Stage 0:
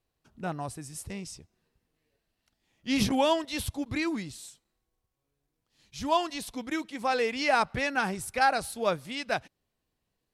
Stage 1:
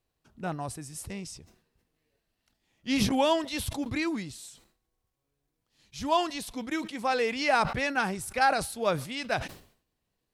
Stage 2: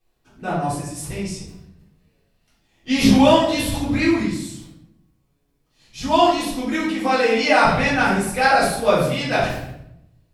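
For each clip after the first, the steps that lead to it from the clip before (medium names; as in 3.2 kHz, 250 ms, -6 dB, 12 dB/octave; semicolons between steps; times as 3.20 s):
decay stretcher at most 110 dB/s
reverberation RT60 0.80 s, pre-delay 3 ms, DRR -11.5 dB; trim -1.5 dB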